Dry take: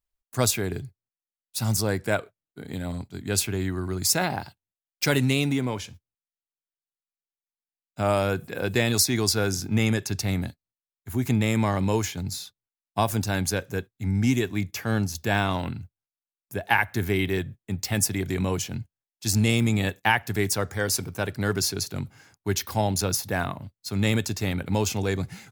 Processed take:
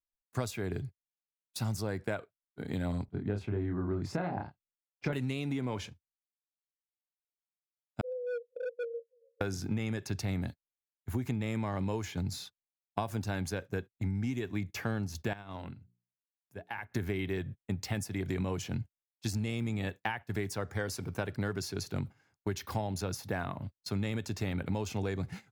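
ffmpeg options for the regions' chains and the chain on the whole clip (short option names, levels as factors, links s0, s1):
-filter_complex "[0:a]asettb=1/sr,asplit=3[s0][s1][s2];[s0]atrim=end=3.054[s3];[s1]atrim=start=3.05:end=5.13,asetpts=PTS-STARTPTS,afade=t=in:d=0.004:c=qsin,afade=t=out:st=2.076:d=0.004:c=qsin,lowpass=f=1000:p=1,aemphasis=mode=reproduction:type=cd,asplit=2[s4][s5];[s5]adelay=29,volume=0.668[s6];[s4][s6]amix=inputs=2:normalize=0,atrim=end_sample=91728[s7];[s2]atrim=start=5.126[s8];[s3][s7]acrossfade=d=0.004:c1=hsin:c2=qsin[s9];[s9][s8]acrossfade=d=0.004:c1=qsin:c2=hsin,asettb=1/sr,asplit=3[s10][s11][s12];[s10]atrim=end=8.014[s13];[s11]atrim=start=8.01:end=9.41,asetpts=PTS-STARTPTS,afade=t=in:d=0.004:c=qsin,afade=t=out:st=1.396:d=0.004:c=qsin,asuperpass=centerf=500:order=20:qfactor=6.4,asoftclip=type=hard:threshold=0.0237[s14];[s12]atrim=start=9.406[s15];[s13][s14]acrossfade=d=0.004:c1=hsin:c2=qsin[s16];[s16][s15]acrossfade=d=0.004:c1=qsin:c2=hsin,asettb=1/sr,asplit=3[s17][s18][s19];[s17]atrim=end=15.334[s20];[s18]atrim=start=15.33:end=16.92,asetpts=PTS-STARTPTS,afade=t=in:d=0.004:c=qsin,afade=t=out:st=1.586:d=0.004:c=qsin,bandreject=f=60:t=h:w=6,bandreject=f=120:t=h:w=6,bandreject=f=180:t=h:w=6,bandreject=f=240:t=h:w=6,bandreject=f=300:t=h:w=6,bandreject=f=360:t=h:w=6,bandreject=f=420:t=h:w=6,acompressor=threshold=0.00708:ratio=2.5:attack=3.2:release=140:knee=1:detection=peak[s21];[s19]atrim=start=16.916[s22];[s20][s21]acrossfade=d=0.004:c1=hsin:c2=qsin[s23];[s23][s22]acrossfade=d=0.004:c1=qsin:c2=hsin,acompressor=threshold=0.0355:ratio=20,agate=range=0.178:threshold=0.00891:ratio=16:detection=peak,highshelf=f=4600:g=-11"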